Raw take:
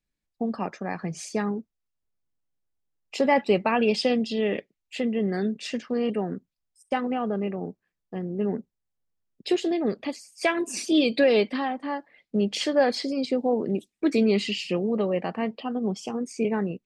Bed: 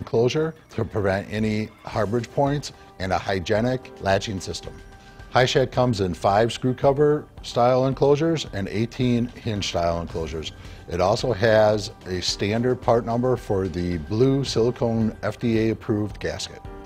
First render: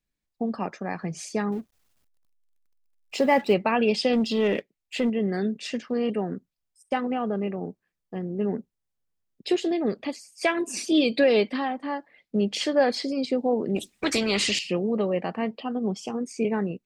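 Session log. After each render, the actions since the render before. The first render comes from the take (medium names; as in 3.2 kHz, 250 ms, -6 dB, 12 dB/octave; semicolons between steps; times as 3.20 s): 1.52–3.54 s: companding laws mixed up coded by mu; 4.13–5.10 s: waveshaping leveller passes 1; 13.76–14.59 s: spectrum-flattening compressor 2:1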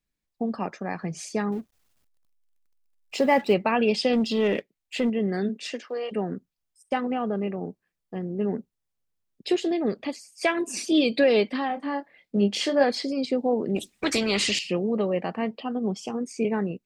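5.48–6.11 s: high-pass 180 Hz -> 550 Hz 24 dB/octave; 11.67–12.84 s: doubling 25 ms -6 dB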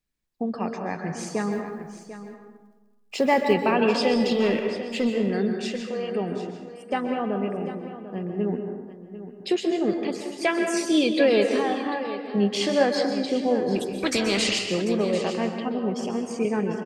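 delay 744 ms -13 dB; plate-style reverb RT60 1.2 s, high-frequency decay 0.5×, pre-delay 115 ms, DRR 4.5 dB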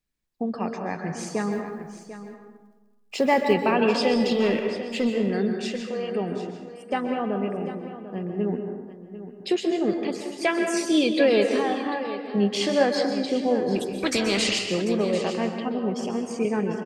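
no audible change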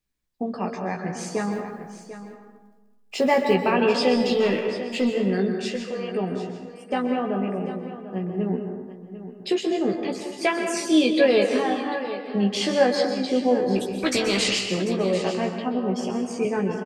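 doubling 16 ms -5 dB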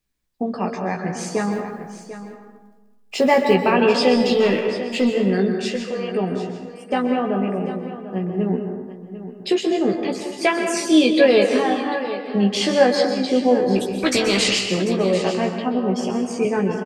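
trim +4 dB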